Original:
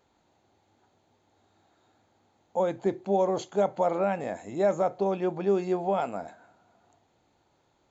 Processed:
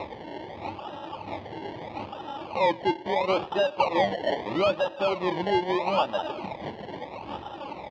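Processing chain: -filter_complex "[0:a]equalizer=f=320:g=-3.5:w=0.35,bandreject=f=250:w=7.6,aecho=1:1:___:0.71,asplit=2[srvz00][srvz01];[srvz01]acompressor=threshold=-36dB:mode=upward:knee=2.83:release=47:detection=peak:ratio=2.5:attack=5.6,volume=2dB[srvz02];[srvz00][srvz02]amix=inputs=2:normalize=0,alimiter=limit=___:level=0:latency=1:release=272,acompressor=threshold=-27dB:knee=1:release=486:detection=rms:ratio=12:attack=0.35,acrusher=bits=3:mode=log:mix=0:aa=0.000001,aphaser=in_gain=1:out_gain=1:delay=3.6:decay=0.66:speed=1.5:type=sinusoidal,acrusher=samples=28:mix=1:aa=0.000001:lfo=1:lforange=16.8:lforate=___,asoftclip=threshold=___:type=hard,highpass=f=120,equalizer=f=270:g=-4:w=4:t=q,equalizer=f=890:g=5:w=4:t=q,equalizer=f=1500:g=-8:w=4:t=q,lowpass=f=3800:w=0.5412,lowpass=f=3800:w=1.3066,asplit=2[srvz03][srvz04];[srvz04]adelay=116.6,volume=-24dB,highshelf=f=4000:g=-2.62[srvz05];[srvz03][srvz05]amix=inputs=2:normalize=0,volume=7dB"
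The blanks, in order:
3.5, -10dB, 0.77, -26dB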